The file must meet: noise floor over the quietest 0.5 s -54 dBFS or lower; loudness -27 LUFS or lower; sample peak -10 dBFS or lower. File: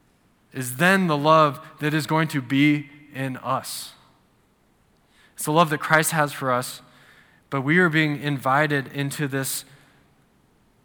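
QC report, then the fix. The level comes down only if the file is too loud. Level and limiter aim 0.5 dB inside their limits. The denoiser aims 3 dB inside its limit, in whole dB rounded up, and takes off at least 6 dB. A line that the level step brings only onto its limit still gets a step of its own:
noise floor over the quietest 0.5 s -62 dBFS: pass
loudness -22.0 LUFS: fail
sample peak -3.0 dBFS: fail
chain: trim -5.5 dB; peak limiter -10.5 dBFS

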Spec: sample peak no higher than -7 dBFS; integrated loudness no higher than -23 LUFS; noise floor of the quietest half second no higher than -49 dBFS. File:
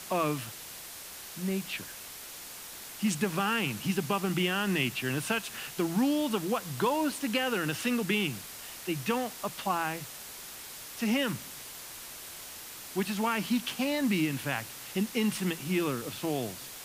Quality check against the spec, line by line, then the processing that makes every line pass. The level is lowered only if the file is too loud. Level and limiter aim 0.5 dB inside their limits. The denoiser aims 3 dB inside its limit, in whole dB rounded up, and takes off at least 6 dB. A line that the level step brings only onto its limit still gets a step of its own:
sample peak -15.0 dBFS: pass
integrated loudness -32.0 LUFS: pass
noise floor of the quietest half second -45 dBFS: fail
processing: noise reduction 7 dB, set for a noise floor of -45 dBFS

